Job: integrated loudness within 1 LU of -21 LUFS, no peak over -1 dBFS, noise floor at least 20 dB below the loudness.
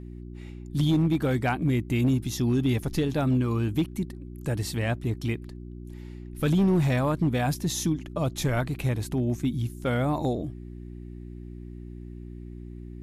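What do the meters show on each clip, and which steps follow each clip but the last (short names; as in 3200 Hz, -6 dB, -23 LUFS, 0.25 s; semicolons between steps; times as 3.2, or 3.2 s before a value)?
clipped 0.7%; flat tops at -17.0 dBFS; hum 60 Hz; harmonics up to 360 Hz; hum level -39 dBFS; loudness -27.0 LUFS; peak -17.0 dBFS; loudness target -21.0 LUFS
-> clip repair -17 dBFS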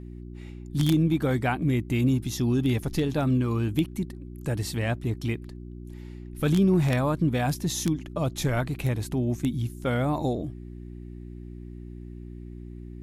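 clipped 0.0%; hum 60 Hz; harmonics up to 360 Hz; hum level -39 dBFS
-> de-hum 60 Hz, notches 6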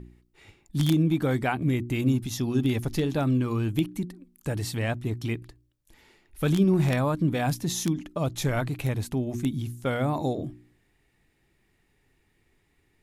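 hum none; loudness -27.0 LUFS; peak -8.0 dBFS; loudness target -21.0 LUFS
-> gain +6 dB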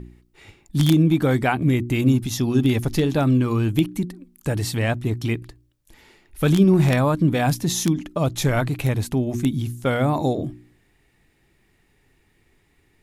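loudness -21.0 LUFS; peak -2.0 dBFS; noise floor -63 dBFS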